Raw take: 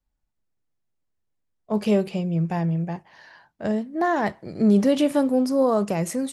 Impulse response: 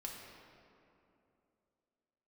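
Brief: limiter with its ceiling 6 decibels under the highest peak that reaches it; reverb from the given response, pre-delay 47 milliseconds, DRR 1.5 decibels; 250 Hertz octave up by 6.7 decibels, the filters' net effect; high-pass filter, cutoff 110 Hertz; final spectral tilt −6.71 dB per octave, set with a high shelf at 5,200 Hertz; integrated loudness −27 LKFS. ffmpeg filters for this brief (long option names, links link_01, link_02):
-filter_complex "[0:a]highpass=110,equalizer=frequency=250:width_type=o:gain=8.5,highshelf=frequency=5200:gain=9,alimiter=limit=-10dB:level=0:latency=1,asplit=2[link_01][link_02];[1:a]atrim=start_sample=2205,adelay=47[link_03];[link_02][link_03]afir=irnorm=-1:irlink=0,volume=0.5dB[link_04];[link_01][link_04]amix=inputs=2:normalize=0,volume=-9.5dB"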